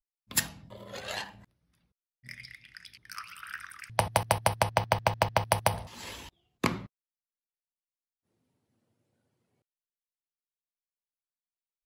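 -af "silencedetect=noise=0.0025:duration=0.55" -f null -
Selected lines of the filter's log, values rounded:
silence_start: 1.45
silence_end: 2.24 | silence_duration: 0.79
silence_start: 6.86
silence_end: 11.85 | silence_duration: 4.99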